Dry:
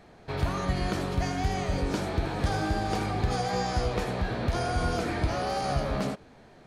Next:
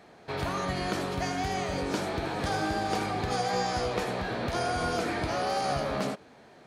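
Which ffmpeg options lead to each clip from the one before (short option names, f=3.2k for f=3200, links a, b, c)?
-af "highpass=f=250:p=1,volume=1.5dB"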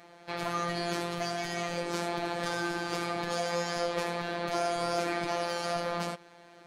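-af "asoftclip=type=tanh:threshold=-24dB,lowshelf=f=170:g=-10.5,afftfilt=real='hypot(re,im)*cos(PI*b)':imag='0':win_size=1024:overlap=0.75,volume=4.5dB"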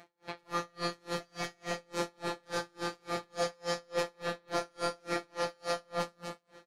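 -filter_complex "[0:a]asplit=2[a][b];[b]aecho=0:1:66|101|228|358:0.596|0.501|0.562|0.282[c];[a][c]amix=inputs=2:normalize=0,aeval=exprs='val(0)*pow(10,-37*(0.5-0.5*cos(2*PI*3.5*n/s))/20)':c=same"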